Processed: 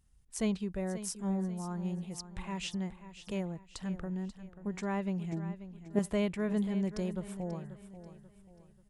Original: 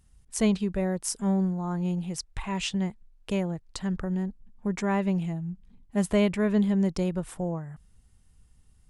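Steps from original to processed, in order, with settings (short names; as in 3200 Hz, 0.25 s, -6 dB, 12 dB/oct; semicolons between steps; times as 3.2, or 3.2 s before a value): 5.32–5.99 bell 340 Hz +13.5 dB 1.2 oct; on a send: feedback echo 0.537 s, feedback 38%, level -13 dB; on the sum: gain -8 dB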